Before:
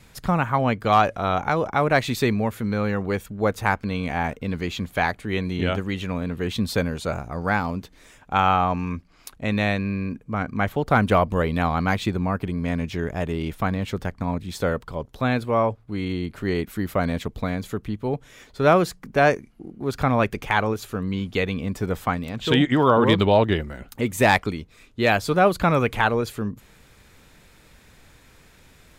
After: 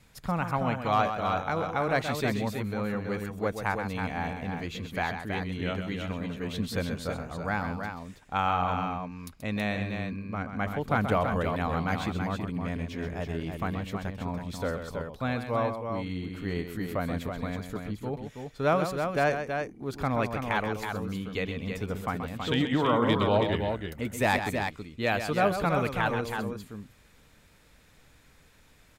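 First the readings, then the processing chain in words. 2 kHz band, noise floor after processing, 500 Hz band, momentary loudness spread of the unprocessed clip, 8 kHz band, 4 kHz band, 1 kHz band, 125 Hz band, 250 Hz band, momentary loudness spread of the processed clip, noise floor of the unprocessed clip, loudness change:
−6.5 dB, −58 dBFS, −7.0 dB, 10 LU, −6.5 dB, −6.5 dB, −6.5 dB, −6.5 dB, −7.0 dB, 9 LU, −53 dBFS, −7.0 dB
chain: notch filter 370 Hz, Q 12
on a send: multi-tap delay 130/325 ms −8.5/−6 dB
on the sum: level −8 dB

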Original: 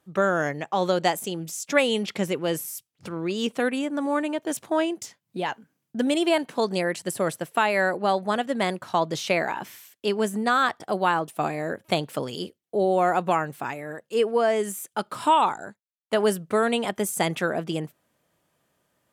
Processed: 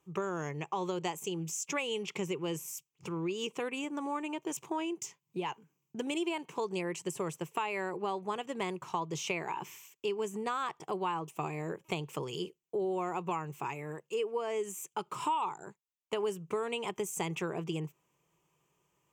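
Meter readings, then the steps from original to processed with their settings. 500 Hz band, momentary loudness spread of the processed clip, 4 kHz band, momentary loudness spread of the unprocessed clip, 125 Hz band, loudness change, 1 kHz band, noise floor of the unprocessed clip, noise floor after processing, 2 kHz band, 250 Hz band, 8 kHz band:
−11.0 dB, 6 LU, −10.0 dB, 10 LU, −7.0 dB, −11.0 dB, −11.0 dB, −79 dBFS, −82 dBFS, −13.0 dB, −10.5 dB, −6.5 dB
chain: EQ curve with evenly spaced ripples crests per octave 0.73, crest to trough 12 dB
downward compressor 3 to 1, threshold −27 dBFS, peak gain reduction 12.5 dB
level −6 dB

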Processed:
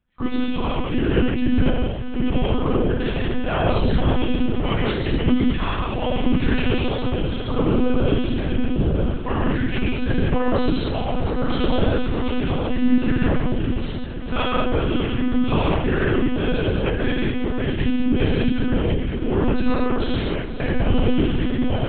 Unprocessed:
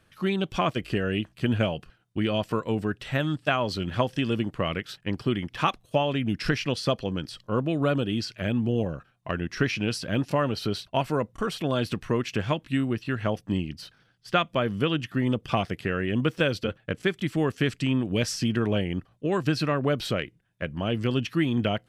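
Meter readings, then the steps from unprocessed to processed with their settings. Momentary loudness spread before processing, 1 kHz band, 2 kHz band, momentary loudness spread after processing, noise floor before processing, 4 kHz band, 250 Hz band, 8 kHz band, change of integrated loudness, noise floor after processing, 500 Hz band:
6 LU, +3.0 dB, +2.5 dB, 4 LU, −64 dBFS, +1.5 dB, +6.5 dB, below −35 dB, +5.0 dB, −26 dBFS, +4.0 dB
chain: random phases in long frames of 50 ms
noise gate −49 dBFS, range −25 dB
low-shelf EQ 220 Hz +11 dB
downward compressor 20 to 1, threshold −23 dBFS, peak gain reduction 11.5 dB
brickwall limiter −21 dBFS, peak gain reduction 7 dB
amplitude tremolo 0.77 Hz, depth 39%
feedback delay with all-pass diffusion 492 ms, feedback 76%, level −12 dB
reverb whose tail is shaped and stops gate 260 ms flat, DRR −4.5 dB
one-pitch LPC vocoder at 8 kHz 250 Hz
level +6.5 dB

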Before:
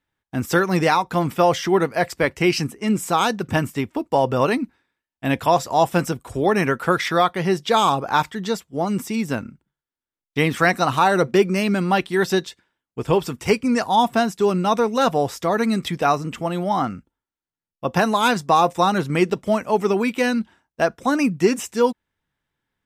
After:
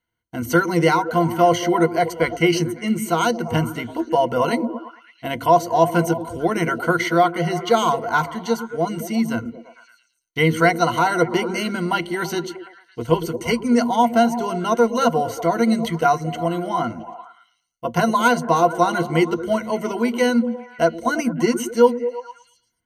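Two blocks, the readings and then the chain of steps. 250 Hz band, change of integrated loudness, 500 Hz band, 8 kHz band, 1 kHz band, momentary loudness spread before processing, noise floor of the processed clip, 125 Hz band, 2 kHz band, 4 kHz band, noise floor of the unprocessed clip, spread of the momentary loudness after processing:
+1.0 dB, +0.5 dB, +1.0 dB, +0.5 dB, +0.5 dB, 8 LU, −66 dBFS, 0.0 dB, 0.0 dB, −1.5 dB, below −85 dBFS, 10 LU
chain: EQ curve with evenly spaced ripples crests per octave 1.9, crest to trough 17 dB
on a send: echo through a band-pass that steps 112 ms, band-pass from 280 Hz, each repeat 0.7 octaves, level −7 dB
on the sum: level −3.5 dB

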